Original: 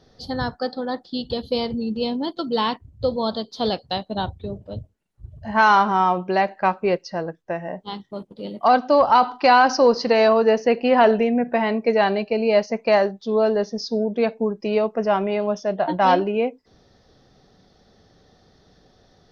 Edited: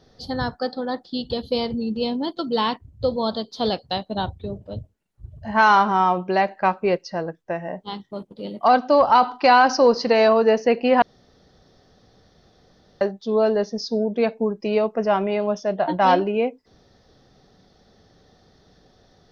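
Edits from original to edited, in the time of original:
0:11.02–0:13.01: fill with room tone

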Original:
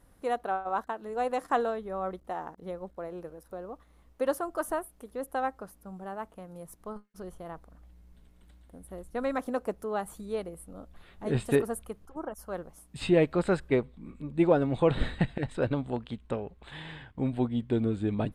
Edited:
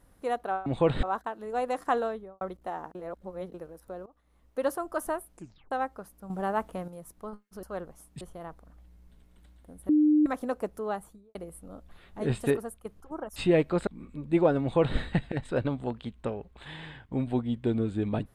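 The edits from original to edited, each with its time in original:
0:01.73–0:02.04: fade out and dull
0:02.58–0:03.17: reverse
0:03.69–0:04.30: fade in, from −20 dB
0:04.95: tape stop 0.39 s
0:05.93–0:06.51: clip gain +9 dB
0:08.94–0:09.31: beep over 302 Hz −18 dBFS
0:09.91–0:10.40: fade out and dull
0:11.47–0:11.90: fade out, to −11 dB
0:12.41–0:12.99: move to 0:07.26
0:13.50–0:13.93: remove
0:14.67–0:15.04: duplicate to 0:00.66

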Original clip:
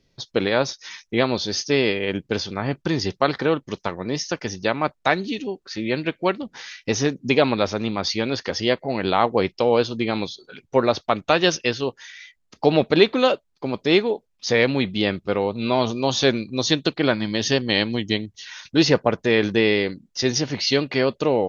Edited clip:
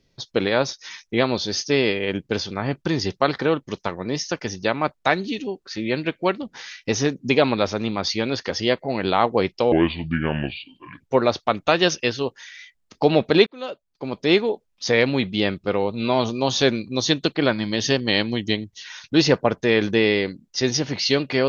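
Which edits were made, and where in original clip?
0:09.72–0:10.62: play speed 70%
0:13.08–0:13.93: fade in

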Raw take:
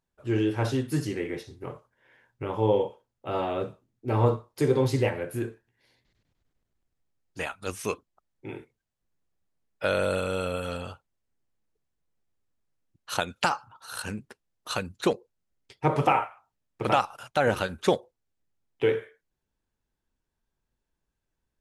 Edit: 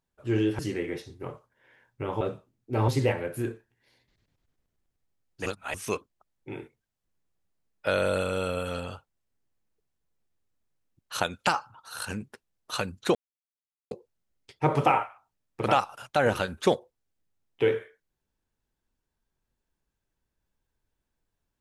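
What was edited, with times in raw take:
0:00.59–0:01.00: remove
0:02.62–0:03.56: remove
0:04.23–0:04.85: remove
0:07.43–0:07.71: reverse
0:15.12: splice in silence 0.76 s

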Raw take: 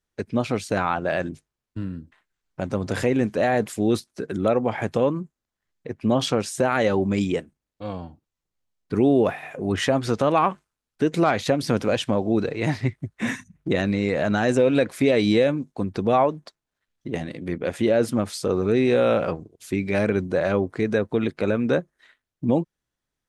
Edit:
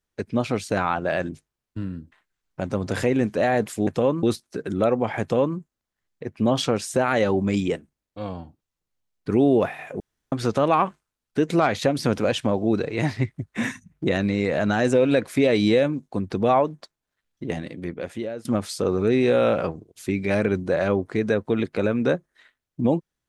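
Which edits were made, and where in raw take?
0:04.85–0:05.21: duplicate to 0:03.87
0:09.64–0:09.96: fill with room tone
0:17.23–0:18.09: fade out, to −20 dB

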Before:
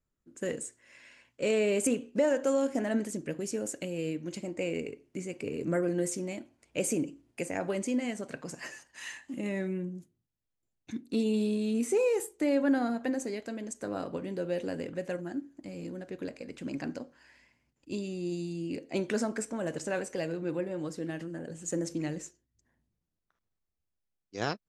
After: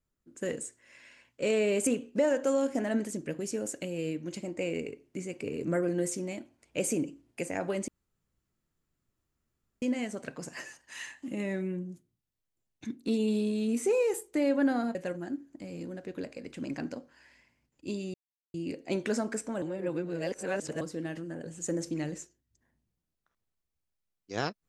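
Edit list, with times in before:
0:07.88: splice in room tone 1.94 s
0:13.01–0:14.99: remove
0:18.18–0:18.58: silence
0:19.66–0:20.85: reverse

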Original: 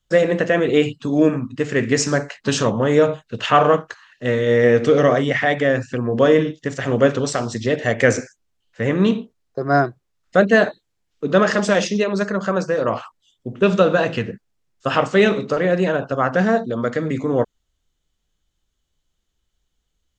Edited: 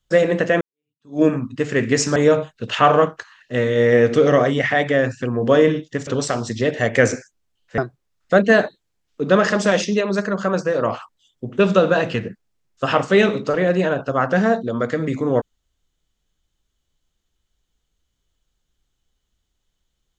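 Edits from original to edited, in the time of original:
0:00.61–0:01.22: fade in exponential
0:02.16–0:02.87: remove
0:06.78–0:07.12: remove
0:08.83–0:09.81: remove

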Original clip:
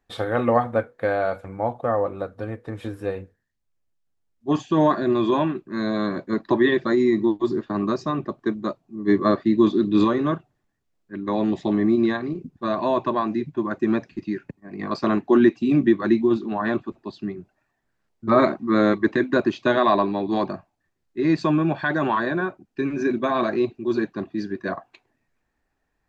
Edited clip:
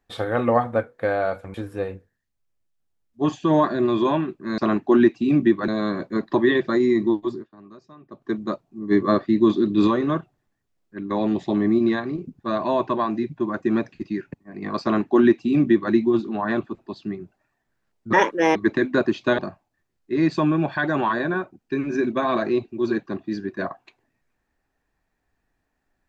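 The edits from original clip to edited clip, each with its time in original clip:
0:01.54–0:02.81: remove
0:07.34–0:08.54: duck −22 dB, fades 0.30 s
0:14.99–0:16.09: duplicate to 0:05.85
0:18.30–0:18.94: play speed 151%
0:19.77–0:20.45: remove

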